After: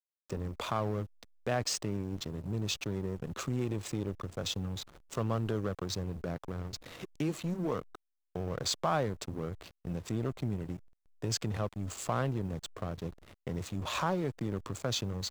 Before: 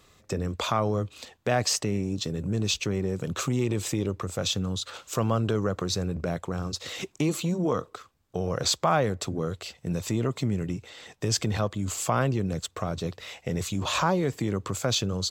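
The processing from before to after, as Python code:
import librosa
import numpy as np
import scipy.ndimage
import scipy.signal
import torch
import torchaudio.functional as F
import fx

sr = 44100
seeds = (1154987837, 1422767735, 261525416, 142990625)

y = fx.quant_dither(x, sr, seeds[0], bits=10, dither='triangular')
y = fx.backlash(y, sr, play_db=-29.0)
y = y * 10.0 ** (-6.5 / 20.0)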